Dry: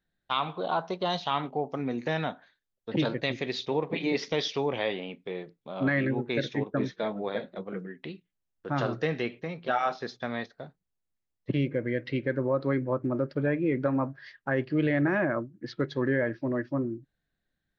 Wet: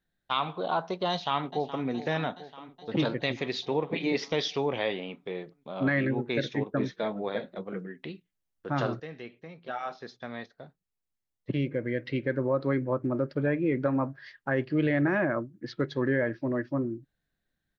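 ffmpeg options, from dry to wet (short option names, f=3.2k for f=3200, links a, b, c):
-filter_complex "[0:a]asplit=2[a][b];[b]afade=t=in:st=1.1:d=0.01,afade=t=out:st=1.85:d=0.01,aecho=0:1:420|840|1260|1680|2100|2520|2940|3360|3780:0.211349|0.147944|0.103561|0.0724927|0.0507449|0.0355214|0.024865|0.0174055|0.0121838[c];[a][c]amix=inputs=2:normalize=0,asplit=2[d][e];[d]atrim=end=9,asetpts=PTS-STARTPTS,afade=t=out:st=8.996:d=0.004:c=hsin:silence=0.211349[f];[e]atrim=start=9,asetpts=PTS-STARTPTS,afade=t=in:d=3.35:silence=0.211349[g];[f][g]concat=n=2:v=0:a=1"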